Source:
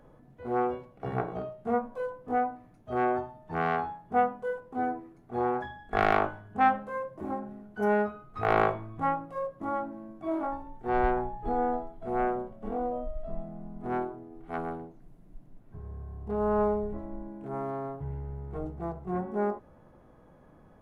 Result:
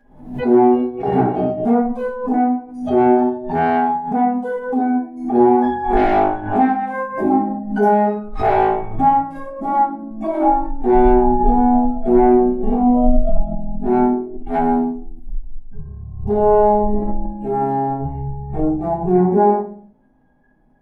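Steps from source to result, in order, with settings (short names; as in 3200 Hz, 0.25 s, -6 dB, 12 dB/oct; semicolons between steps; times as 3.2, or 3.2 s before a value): 5.02–7.51 reverse delay 0.342 s, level -13 dB; thirty-one-band EQ 250 Hz +11 dB, 500 Hz -6 dB, 800 Hz +11 dB, 1250 Hz -7 dB; compressor 10:1, threshold -23 dBFS, peak gain reduction 13.5 dB; spectral noise reduction 19 dB; dynamic EQ 390 Hz, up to +6 dB, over -47 dBFS, Q 2.3; shoebox room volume 47 m³, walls mixed, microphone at 1.7 m; backwards sustainer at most 89 dB/s; gain +2 dB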